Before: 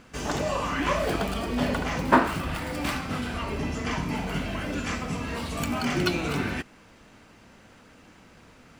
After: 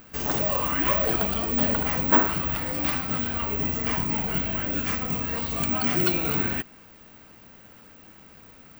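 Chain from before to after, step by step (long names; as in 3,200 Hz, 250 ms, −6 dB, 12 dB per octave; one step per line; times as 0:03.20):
soft clipping −13.5 dBFS, distortion −16 dB
bad sample-rate conversion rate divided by 2×, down none, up zero stuff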